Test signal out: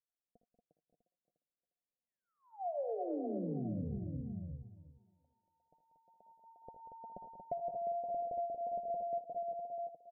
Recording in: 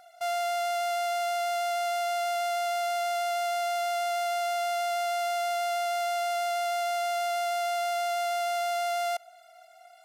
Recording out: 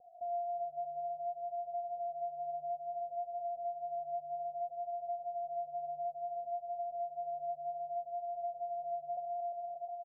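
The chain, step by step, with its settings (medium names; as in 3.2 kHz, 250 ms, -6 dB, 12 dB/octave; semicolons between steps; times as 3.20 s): rippled Chebyshev low-pass 740 Hz, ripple 6 dB; thinning echo 354 ms, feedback 28%, high-pass 220 Hz, level -3 dB; flange 0.6 Hz, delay 2.1 ms, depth 5 ms, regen +34%; multi-tap echo 59/78/188/233/571/650 ms -12/-12/-12/-6.5/-12/-13 dB; compression 3:1, threshold -42 dBFS; trim +4.5 dB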